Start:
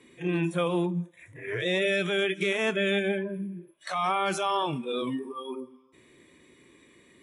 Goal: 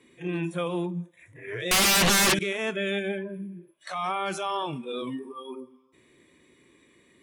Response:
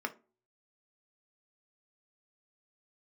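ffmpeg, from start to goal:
-filter_complex "[0:a]asettb=1/sr,asplit=3[link_01][link_02][link_03];[link_01]atrim=end=1.714[link_04];[link_02]atrim=start=1.71:end=2.39,asetpts=PTS-STARTPTS,afade=type=in:duration=0.004:curve=qsin,afade=type=out:start_time=0.676:duration=0.004:curve=qsin,aeval=exprs='0.178*sin(PI/2*7.94*val(0)/0.178)':channel_layout=same[link_05];[link_03]atrim=start=2.386[link_06];[link_04][link_05]acrossfade=duration=0.004:curve1=hsin:curve2=qsin[link_07];[link_07][link_06]acrossfade=duration=0.004:curve1=qsin:curve2=hsin,volume=-2.5dB"

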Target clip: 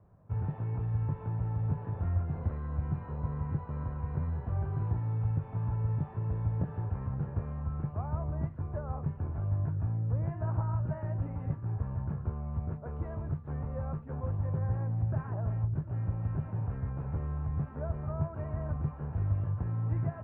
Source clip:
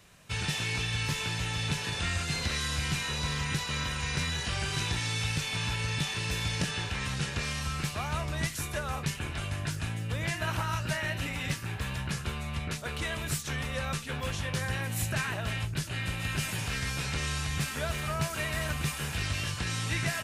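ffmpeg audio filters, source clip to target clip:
ffmpeg -i in.wav -af "lowpass=frequency=1000:width=0.5412,lowpass=frequency=1000:width=1.3066,equalizer=frequency=97:width_type=o:width=0.73:gain=10,volume=-3.5dB" out.wav

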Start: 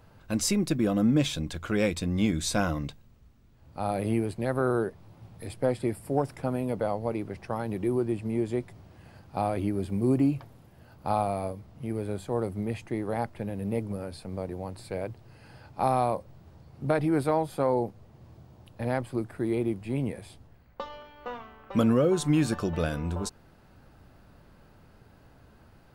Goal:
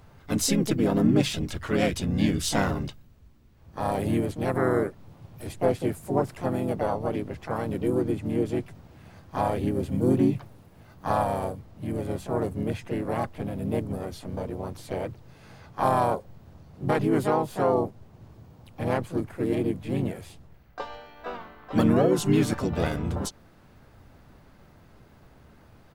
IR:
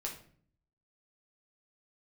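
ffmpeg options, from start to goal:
-filter_complex "[0:a]asplit=3[link_01][link_02][link_03];[link_02]asetrate=35002,aresample=44100,atempo=1.25992,volume=-5dB[link_04];[link_03]asetrate=58866,aresample=44100,atempo=0.749154,volume=-5dB[link_05];[link_01][link_04][link_05]amix=inputs=3:normalize=0"

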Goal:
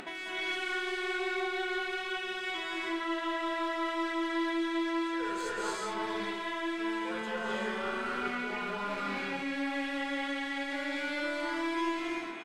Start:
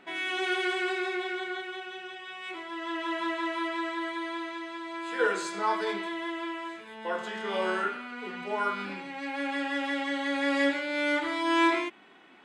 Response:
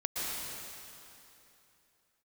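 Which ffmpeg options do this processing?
-filter_complex "[0:a]aecho=1:1:235:0.1,areverse,acompressor=threshold=-38dB:ratio=10,areverse,aeval=exprs='clip(val(0),-1,0.01)':channel_layout=same[link_01];[1:a]atrim=start_sample=2205,afade=type=out:start_time=0.3:duration=0.01,atrim=end_sample=13671,asetrate=26460,aresample=44100[link_02];[link_01][link_02]afir=irnorm=-1:irlink=0,acompressor=mode=upward:threshold=-36dB:ratio=2.5"

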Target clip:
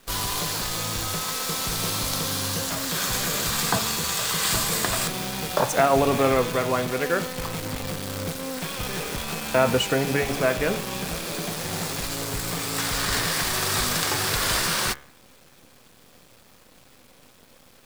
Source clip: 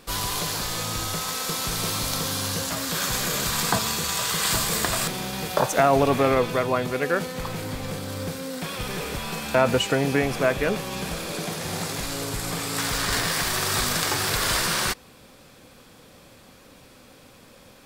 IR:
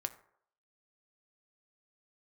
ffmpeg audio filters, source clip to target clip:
-af "bandreject=frequency=70.19:width_type=h:width=4,bandreject=frequency=140.38:width_type=h:width=4,bandreject=frequency=210.57:width_type=h:width=4,bandreject=frequency=280.76:width_type=h:width=4,bandreject=frequency=350.95:width_type=h:width=4,bandreject=frequency=421.14:width_type=h:width=4,bandreject=frequency=491.33:width_type=h:width=4,bandreject=frequency=561.52:width_type=h:width=4,bandreject=frequency=631.71:width_type=h:width=4,bandreject=frequency=701.9:width_type=h:width=4,bandreject=frequency=772.09:width_type=h:width=4,bandreject=frequency=842.28:width_type=h:width=4,bandreject=frequency=912.47:width_type=h:width=4,bandreject=frequency=982.66:width_type=h:width=4,bandreject=frequency=1052.85:width_type=h:width=4,bandreject=frequency=1123.04:width_type=h:width=4,bandreject=frequency=1193.23:width_type=h:width=4,bandreject=frequency=1263.42:width_type=h:width=4,bandreject=frequency=1333.61:width_type=h:width=4,bandreject=frequency=1403.8:width_type=h:width=4,bandreject=frequency=1473.99:width_type=h:width=4,bandreject=frequency=1544.18:width_type=h:width=4,bandreject=frequency=1614.37:width_type=h:width=4,bandreject=frequency=1684.56:width_type=h:width=4,bandreject=frequency=1754.75:width_type=h:width=4,bandreject=frequency=1824.94:width_type=h:width=4,bandreject=frequency=1895.13:width_type=h:width=4,bandreject=frequency=1965.32:width_type=h:width=4,bandreject=frequency=2035.51:width_type=h:width=4,bandreject=frequency=2105.7:width_type=h:width=4,bandreject=frequency=2175.89:width_type=h:width=4,bandreject=frequency=2246.08:width_type=h:width=4,bandreject=frequency=2316.27:width_type=h:width=4,bandreject=frequency=2386.46:width_type=h:width=4,acrusher=bits=6:dc=4:mix=0:aa=0.000001"

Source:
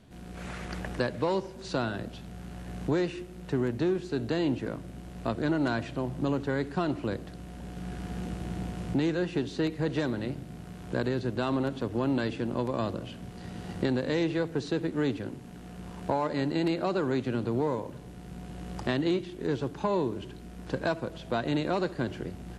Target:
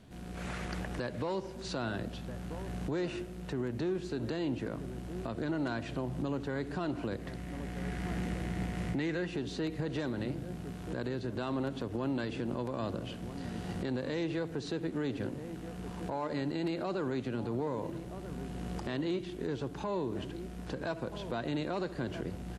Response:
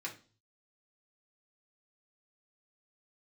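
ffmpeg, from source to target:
-filter_complex "[0:a]asplit=2[link_01][link_02];[link_02]adelay=1283,volume=-17dB,highshelf=frequency=4000:gain=-28.9[link_03];[link_01][link_03]amix=inputs=2:normalize=0,alimiter=level_in=2dB:limit=-24dB:level=0:latency=1:release=123,volume=-2dB,asettb=1/sr,asplit=3[link_04][link_05][link_06];[link_04]atrim=end=7.194[link_07];[link_05]atrim=start=7.19:end=9.27,asetpts=PTS-STARTPTS,afade=type=in:duration=0.004:curve=qsin,afade=type=out:start_time=2.076:duration=0.004:curve=qsin,equalizer=frequency=2000:width=3.1:gain=9.5[link_08];[link_06]atrim=start=9.266[link_09];[link_07][link_08]acrossfade=duration=0.004:curve1=hsin:curve2=qsin[link_10];[link_10][link_09]acrossfade=duration=0.004:curve1=qsin:curve2=hsin"

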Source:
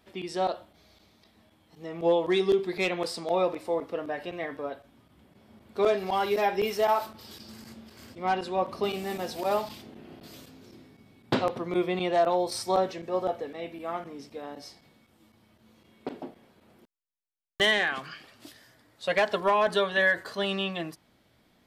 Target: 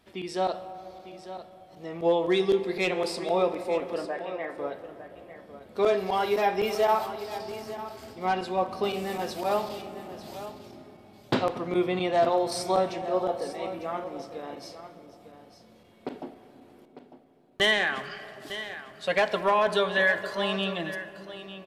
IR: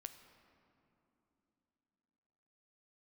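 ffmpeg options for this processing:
-filter_complex "[0:a]asettb=1/sr,asplit=3[link_01][link_02][link_03];[link_01]atrim=end=4.054[link_04];[link_02]atrim=start=4.05:end=4.58,asetpts=PTS-STARTPTS,afade=type=in:duration=0.004:curve=qsin,afade=type=out:start_time=0.526:duration=0.004:curve=qsin,highpass=400,lowpass=2300[link_05];[link_03]atrim=start=4.576[link_06];[link_04][link_05]acrossfade=duration=0.004:curve1=hsin:curve2=qsin[link_07];[link_07][link_06]acrossfade=duration=0.004:curve1=qsin:curve2=hsin,aecho=1:1:900:0.224,asplit=2[link_08][link_09];[1:a]atrim=start_sample=2205,asetrate=24696,aresample=44100[link_10];[link_09][link_10]afir=irnorm=-1:irlink=0,volume=5.5dB[link_11];[link_08][link_11]amix=inputs=2:normalize=0,volume=-7dB"

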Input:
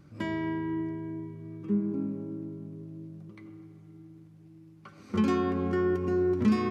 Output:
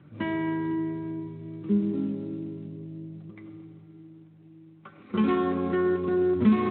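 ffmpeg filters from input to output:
ffmpeg -i in.wav -filter_complex "[0:a]asettb=1/sr,asplit=3[link_01][link_02][link_03];[link_01]atrim=end=3.844[link_04];[link_02]atrim=start=3.84:end=6.36,asetpts=PTS-STARTPTS,afade=type=in:duration=0.004:curve=qsin,afade=type=out:start_time=2.516:duration=0.004:curve=qsin,equalizer=frequency=64:width_type=o:width=2.2:gain=-8[link_05];[link_03]atrim=start=6.356[link_06];[link_04][link_05]acrossfade=duration=0.004:curve1=hsin:curve2=qsin[link_07];[link_07][link_06]acrossfade=duration=0.004:curve1=qsin:curve2=hsin,volume=3dB" -ar 8000 -c:a libspeex -b:a 18k out.spx

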